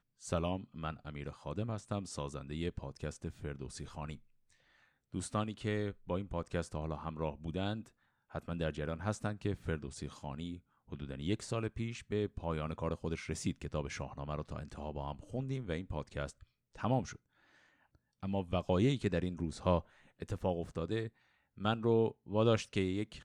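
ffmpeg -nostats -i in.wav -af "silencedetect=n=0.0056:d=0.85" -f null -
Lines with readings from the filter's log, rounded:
silence_start: 4.15
silence_end: 5.14 | silence_duration: 0.99
silence_start: 17.16
silence_end: 18.23 | silence_duration: 1.07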